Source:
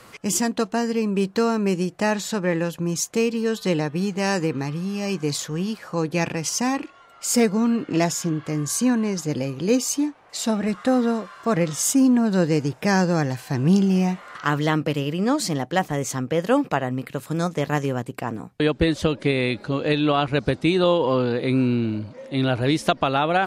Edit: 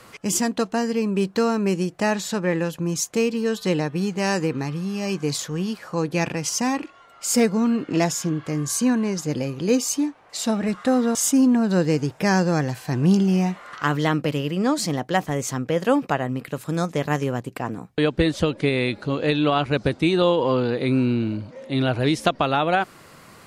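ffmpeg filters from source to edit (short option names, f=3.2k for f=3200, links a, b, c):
-filter_complex "[0:a]asplit=2[a][b];[a]atrim=end=11.152[c];[b]atrim=start=11.768[d];[c][d]acrossfade=d=0.004:c1=hsin:c2=hsin"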